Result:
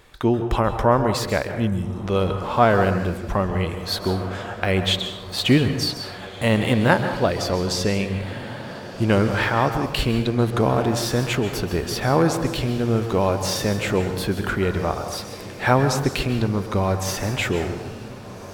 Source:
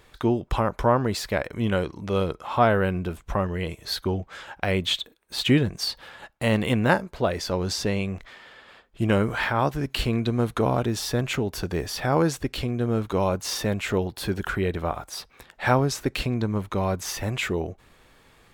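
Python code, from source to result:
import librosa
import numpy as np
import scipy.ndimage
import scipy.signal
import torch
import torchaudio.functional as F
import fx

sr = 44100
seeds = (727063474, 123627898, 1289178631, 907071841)

y = fx.spec_erase(x, sr, start_s=1.67, length_s=0.29, low_hz=250.0, high_hz=4700.0)
y = fx.echo_diffused(y, sr, ms=1661, feedback_pct=49, wet_db=-15)
y = fx.rev_plate(y, sr, seeds[0], rt60_s=0.86, hf_ratio=0.6, predelay_ms=120, drr_db=8.0)
y = y * 10.0 ** (3.0 / 20.0)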